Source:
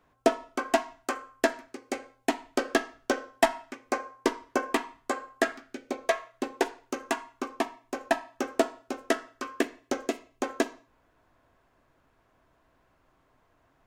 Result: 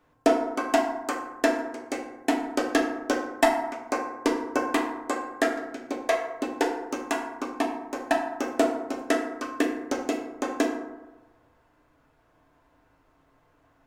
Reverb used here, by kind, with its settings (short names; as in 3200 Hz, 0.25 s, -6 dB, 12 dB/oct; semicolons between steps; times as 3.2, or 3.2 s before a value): FDN reverb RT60 1.1 s, low-frequency decay 1×, high-frequency decay 0.4×, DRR 1 dB